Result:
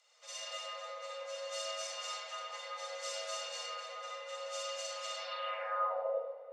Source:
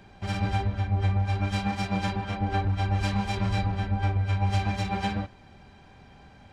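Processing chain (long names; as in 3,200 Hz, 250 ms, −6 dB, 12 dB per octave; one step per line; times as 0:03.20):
comb and all-pass reverb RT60 3.1 s, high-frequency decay 0.3×, pre-delay 10 ms, DRR −7 dB
frequency shifter +450 Hz
band-pass filter sweep 6,800 Hz → 250 Hz, 0:05.18–0:06.44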